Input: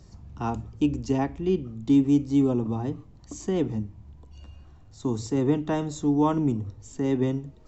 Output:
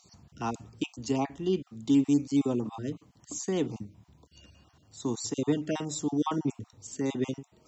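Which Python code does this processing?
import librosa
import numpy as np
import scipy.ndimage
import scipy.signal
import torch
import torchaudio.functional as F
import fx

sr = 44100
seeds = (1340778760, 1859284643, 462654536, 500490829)

y = fx.spec_dropout(x, sr, seeds[0], share_pct=24)
y = scipy.signal.sosfilt(scipy.signal.butter(2, 130.0, 'highpass', fs=sr, output='sos'), y)
y = fx.high_shelf(y, sr, hz=2600.0, db=11.0)
y = y * 10.0 ** (-3.5 / 20.0)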